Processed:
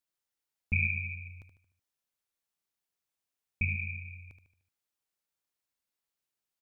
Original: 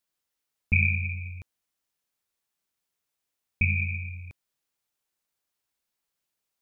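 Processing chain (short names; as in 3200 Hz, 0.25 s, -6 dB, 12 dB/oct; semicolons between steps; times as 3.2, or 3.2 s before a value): feedback echo 75 ms, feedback 46%, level -8.5 dB; gain -6.5 dB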